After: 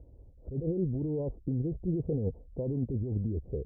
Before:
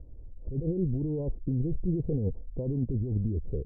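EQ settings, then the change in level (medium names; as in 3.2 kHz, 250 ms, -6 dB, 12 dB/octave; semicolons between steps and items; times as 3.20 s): high-pass 45 Hz; peaking EQ 700 Hz +5.5 dB 1.8 oct; -3.0 dB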